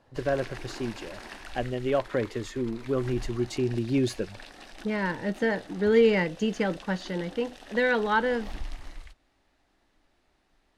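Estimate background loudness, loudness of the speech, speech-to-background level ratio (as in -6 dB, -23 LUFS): -45.5 LUFS, -28.0 LUFS, 17.5 dB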